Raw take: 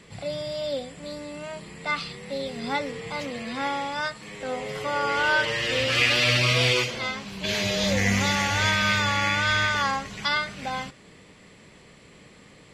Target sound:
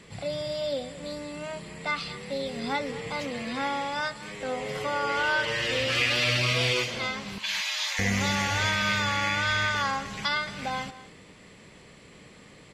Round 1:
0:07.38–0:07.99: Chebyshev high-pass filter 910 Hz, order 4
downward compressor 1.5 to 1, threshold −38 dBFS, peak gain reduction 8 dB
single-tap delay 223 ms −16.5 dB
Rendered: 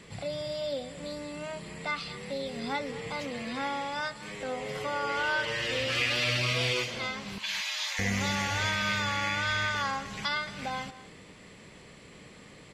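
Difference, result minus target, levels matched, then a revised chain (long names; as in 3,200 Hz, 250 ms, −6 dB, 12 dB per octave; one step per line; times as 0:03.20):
downward compressor: peak gain reduction +3.5 dB
0:07.38–0:07.99: Chebyshev high-pass filter 910 Hz, order 4
downward compressor 1.5 to 1, threshold −28 dBFS, peak gain reduction 4.5 dB
single-tap delay 223 ms −16.5 dB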